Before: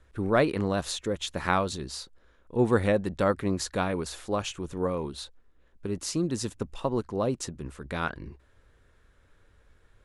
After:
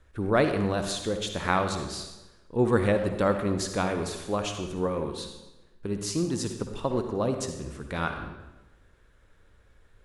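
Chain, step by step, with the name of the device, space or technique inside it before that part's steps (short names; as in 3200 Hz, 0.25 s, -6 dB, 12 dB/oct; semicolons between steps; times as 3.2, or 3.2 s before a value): saturated reverb return (on a send at -5 dB: reverb RT60 1.0 s, pre-delay 51 ms + soft clip -20.5 dBFS, distortion -14 dB)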